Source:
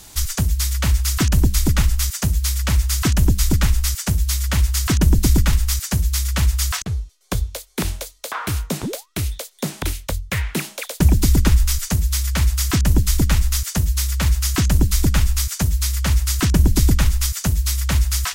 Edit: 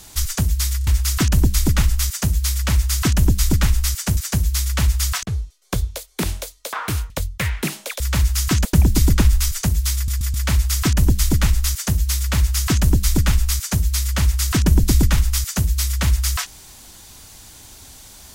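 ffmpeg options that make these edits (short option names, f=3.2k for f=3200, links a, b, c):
-filter_complex "[0:a]asplit=11[a][b][c][d][e][f][g][h][i][j][k];[a]atrim=end=0.812[l];[b]atrim=start=0.778:end=0.812[m];[c]atrim=start=0.778:end=0.812[n];[d]atrim=start=0.868:end=4.172[o];[e]atrim=start=5.758:end=8.692[p];[f]atrim=start=10.018:end=10.922[q];[g]atrim=start=14.068:end=14.722[r];[h]atrim=start=10.918:end=12.352[s];[i]atrim=start=12.218:end=12.352[t];[j]atrim=start=12.218:end=12.352[u];[k]atrim=start=12.218[v];[l][m]acrossfade=d=0.004:c1=hsin:c2=hsin[w];[w][n]acrossfade=d=0.004:c1=hsin:c2=hsin[x];[x][o]acrossfade=d=0.004:c1=hsin:c2=hsin[y];[y][p]acrossfade=d=0.004:c1=hsin:c2=hsin[z];[z][q]acrossfade=d=0.004:c1=hsin:c2=hsin[aa];[aa][r]acrossfade=d=0.004:c1=hsin:c2=hsin[ab];[ab][s]acrossfade=d=0.004:c1=hsin:c2=hsin[ac];[ac][t]acrossfade=d=0.004:c1=hsin:c2=hsin[ad];[ad][u]acrossfade=d=0.004:c1=hsin:c2=hsin[ae];[ae][v]acrossfade=d=0.004:c1=hsin:c2=hsin"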